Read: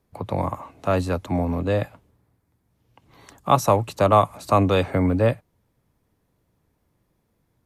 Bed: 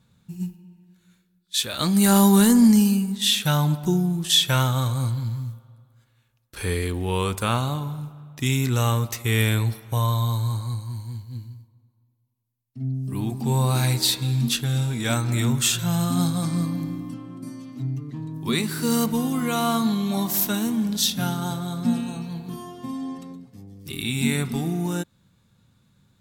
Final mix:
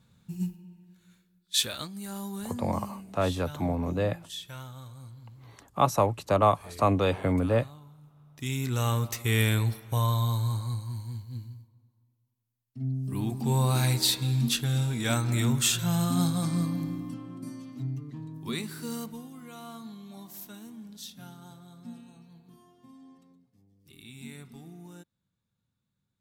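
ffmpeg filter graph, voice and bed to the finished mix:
-filter_complex "[0:a]adelay=2300,volume=0.531[s0];[1:a]volume=6.68,afade=t=out:st=1.61:d=0.27:silence=0.1,afade=t=in:st=8.01:d=1.12:silence=0.125893,afade=t=out:st=17.49:d=1.8:silence=0.133352[s1];[s0][s1]amix=inputs=2:normalize=0"

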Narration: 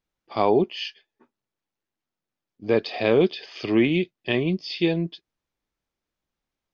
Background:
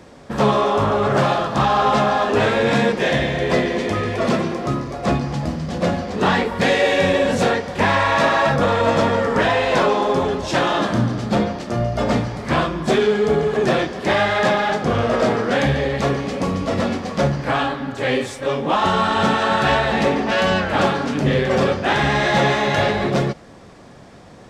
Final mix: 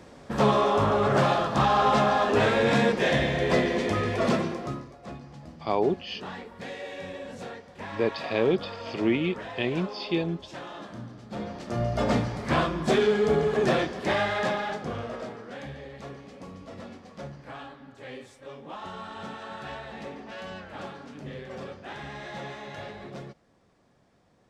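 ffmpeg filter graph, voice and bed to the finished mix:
-filter_complex "[0:a]adelay=5300,volume=0.562[s0];[1:a]volume=3.55,afade=t=out:st=4.28:d=0.68:silence=0.149624,afade=t=in:st=11.29:d=0.64:silence=0.158489,afade=t=out:st=13.68:d=1.64:silence=0.158489[s1];[s0][s1]amix=inputs=2:normalize=0"

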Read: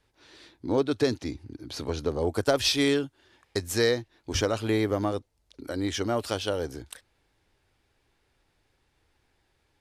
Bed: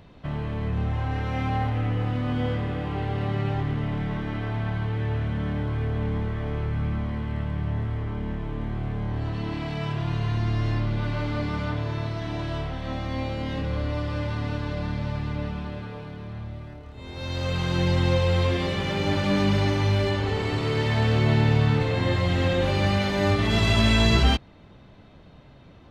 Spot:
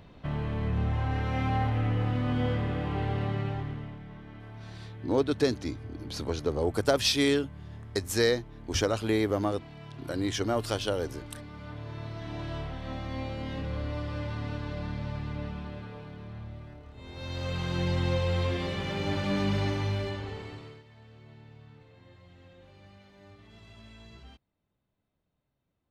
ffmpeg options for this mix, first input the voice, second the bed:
-filter_complex "[0:a]adelay=4400,volume=0.891[s0];[1:a]volume=2.66,afade=t=out:st=3.09:d=0.9:silence=0.188365,afade=t=in:st=11.54:d=0.95:silence=0.298538,afade=t=out:st=19.67:d=1.16:silence=0.0530884[s1];[s0][s1]amix=inputs=2:normalize=0"

